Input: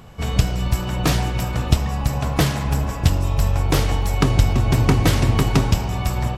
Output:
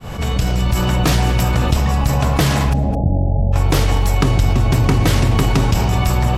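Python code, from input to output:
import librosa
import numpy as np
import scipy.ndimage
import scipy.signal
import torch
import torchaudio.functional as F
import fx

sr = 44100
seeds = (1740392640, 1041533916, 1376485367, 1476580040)

y = fx.fade_in_head(x, sr, length_s=0.94)
y = fx.cheby_ripple(y, sr, hz=840.0, ripple_db=6, at=(2.72, 3.52), fade=0.02)
y = y + 10.0 ** (-21.5 / 20.0) * np.pad(y, (int(214 * sr / 1000.0), 0))[:len(y)]
y = fx.env_flatten(y, sr, amount_pct=70)
y = F.gain(torch.from_numpy(y), -2.0).numpy()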